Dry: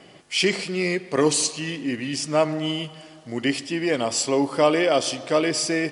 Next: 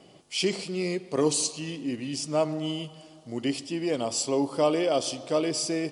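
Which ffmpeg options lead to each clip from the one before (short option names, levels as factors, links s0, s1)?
-af "equalizer=f=1800:t=o:w=0.95:g=-10.5,volume=0.631"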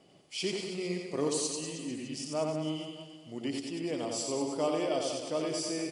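-af "aecho=1:1:90|193.5|312.5|449.4|606.8:0.631|0.398|0.251|0.158|0.1,volume=0.398"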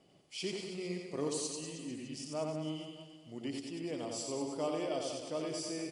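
-af "lowshelf=f=110:g=5.5,volume=0.531"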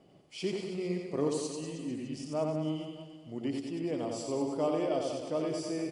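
-af "highshelf=f=2100:g=-10,volume=2"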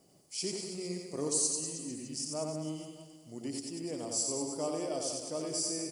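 -af "aexciter=amount=7.3:drive=6.5:freq=4700,volume=0.562"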